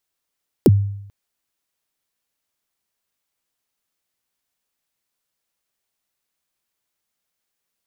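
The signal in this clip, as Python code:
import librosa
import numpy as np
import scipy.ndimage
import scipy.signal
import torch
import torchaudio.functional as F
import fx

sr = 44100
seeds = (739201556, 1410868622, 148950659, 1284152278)

y = fx.drum_kick(sr, seeds[0], length_s=0.44, level_db=-5.5, start_hz=480.0, end_hz=100.0, sweep_ms=36.0, decay_s=0.76, click=True)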